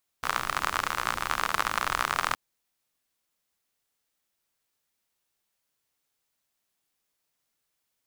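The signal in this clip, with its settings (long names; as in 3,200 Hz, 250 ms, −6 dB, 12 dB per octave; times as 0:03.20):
rain-like ticks over hiss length 2.12 s, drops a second 56, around 1,200 Hz, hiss −12 dB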